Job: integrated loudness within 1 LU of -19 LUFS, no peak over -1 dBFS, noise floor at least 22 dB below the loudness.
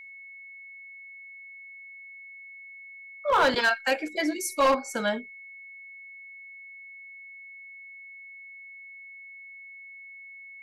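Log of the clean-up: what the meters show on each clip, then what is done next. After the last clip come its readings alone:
clipped samples 0.5%; clipping level -16.5 dBFS; steady tone 2.2 kHz; tone level -43 dBFS; loudness -25.5 LUFS; peak level -16.5 dBFS; loudness target -19.0 LUFS
-> clip repair -16.5 dBFS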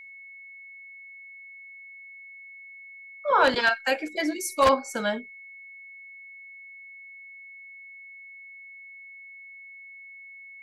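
clipped samples 0.0%; steady tone 2.2 kHz; tone level -43 dBFS
-> band-stop 2.2 kHz, Q 30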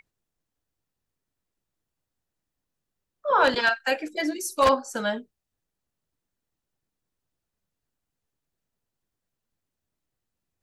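steady tone not found; loudness -24.0 LUFS; peak level -7.0 dBFS; loudness target -19.0 LUFS
-> trim +5 dB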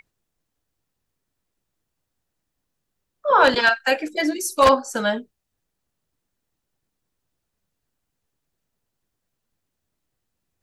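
loudness -19.0 LUFS; peak level -2.0 dBFS; noise floor -80 dBFS

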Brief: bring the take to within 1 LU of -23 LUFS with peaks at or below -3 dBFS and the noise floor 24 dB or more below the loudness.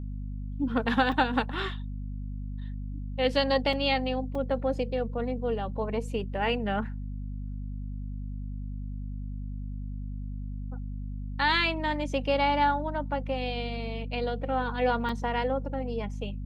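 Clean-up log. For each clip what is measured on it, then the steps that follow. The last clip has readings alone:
dropouts 4; longest dropout 3.1 ms; hum 50 Hz; highest harmonic 250 Hz; hum level -33 dBFS; loudness -30.5 LUFS; peak level -10.5 dBFS; loudness target -23.0 LUFS
-> interpolate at 1.12/3.73/4.35/15.09 s, 3.1 ms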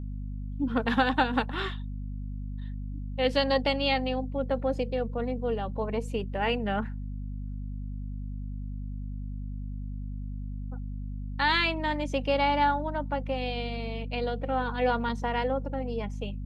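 dropouts 0; hum 50 Hz; highest harmonic 250 Hz; hum level -33 dBFS
-> de-hum 50 Hz, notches 5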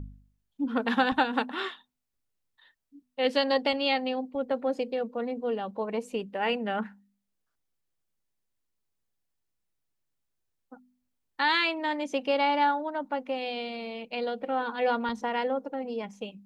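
hum not found; loudness -29.0 LUFS; peak level -10.0 dBFS; loudness target -23.0 LUFS
-> trim +6 dB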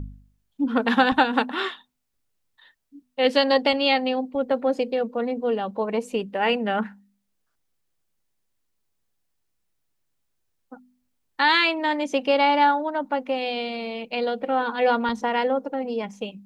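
loudness -23.0 LUFS; peak level -4.0 dBFS; noise floor -74 dBFS

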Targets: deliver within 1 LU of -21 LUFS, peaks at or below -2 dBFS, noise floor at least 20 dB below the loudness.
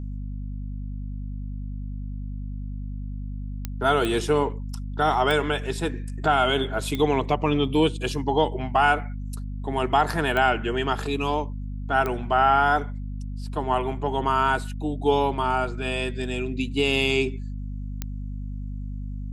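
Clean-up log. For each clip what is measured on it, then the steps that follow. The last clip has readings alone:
clicks found 7; hum 50 Hz; highest harmonic 250 Hz; hum level -29 dBFS; loudness -25.5 LUFS; peak level -7.5 dBFS; loudness target -21.0 LUFS
-> de-click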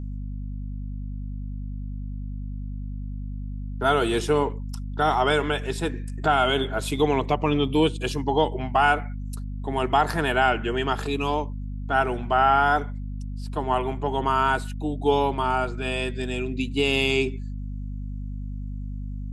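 clicks found 0; hum 50 Hz; highest harmonic 250 Hz; hum level -29 dBFS
-> de-hum 50 Hz, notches 5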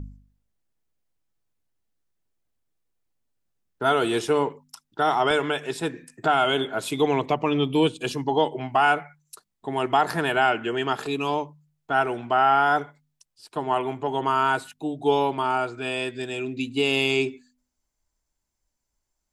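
hum not found; loudness -24.0 LUFS; peak level -8.5 dBFS; loudness target -21.0 LUFS
-> trim +3 dB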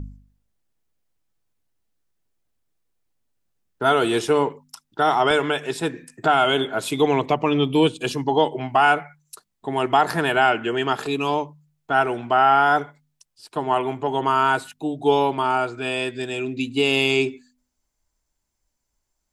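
loudness -21.0 LUFS; peak level -5.5 dBFS; noise floor -77 dBFS

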